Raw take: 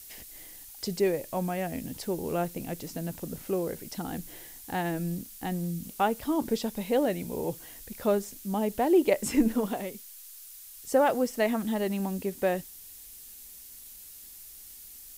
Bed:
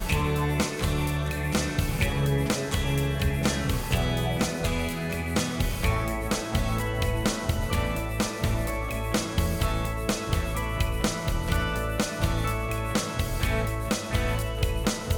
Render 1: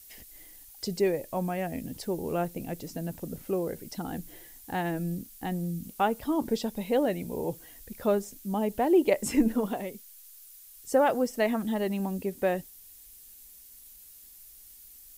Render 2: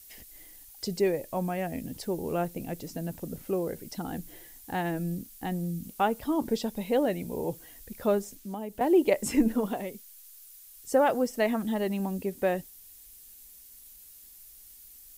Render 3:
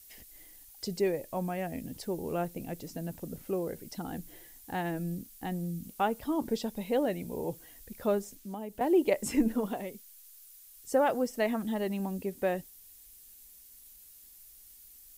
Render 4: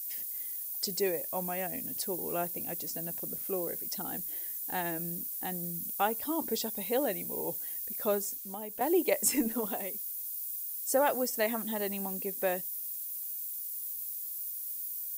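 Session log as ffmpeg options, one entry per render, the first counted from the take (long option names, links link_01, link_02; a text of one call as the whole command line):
ffmpeg -i in.wav -af "afftdn=noise_reduction=6:noise_floor=-48" out.wav
ffmpeg -i in.wav -filter_complex "[0:a]asettb=1/sr,asplit=3[link_01][link_02][link_03];[link_01]atrim=end=8.354[link_04];[link_02]atrim=start=8.35:end=8.81,asetpts=PTS-STARTPTS,afade=type=in:duration=0.004:curve=qsin,afade=type=out:start_time=0.456:duration=0.004:curve=qsin,acrossover=split=260|7800[link_05][link_06][link_07];[link_05]acompressor=threshold=-43dB:ratio=4[link_08];[link_06]acompressor=threshold=-37dB:ratio=4[link_09];[link_07]acompressor=threshold=-55dB:ratio=4[link_10];[link_08][link_09][link_10]amix=inputs=3:normalize=0[link_11];[link_03]atrim=start=8.806[link_12];[link_04][link_11]acrossfade=duration=0.004:curve1=hsin:curve2=qsin[link_13];[link_13][link_12]acrossfade=duration=0.004:curve1=qsin:curve2=hsin" out.wav
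ffmpeg -i in.wav -af "volume=-3dB" out.wav
ffmpeg -i in.wav -af "aemphasis=mode=production:type=bsi,bandreject=frequency=2900:width=25" out.wav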